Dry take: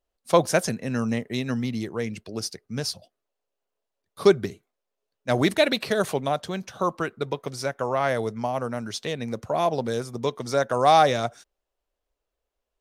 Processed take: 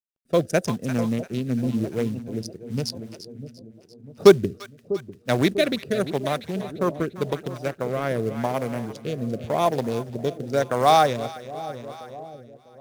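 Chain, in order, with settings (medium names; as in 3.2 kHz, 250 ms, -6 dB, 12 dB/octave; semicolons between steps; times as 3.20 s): local Wiener filter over 41 samples; treble shelf 10 kHz +9 dB; in parallel at -2 dB: gain riding within 5 dB 0.5 s; on the sum: companded quantiser 6-bit; on a send: two-band feedback delay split 760 Hz, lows 647 ms, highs 344 ms, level -12 dB; on the sum: rotary cabinet horn 0.9 Hz; trim -2 dB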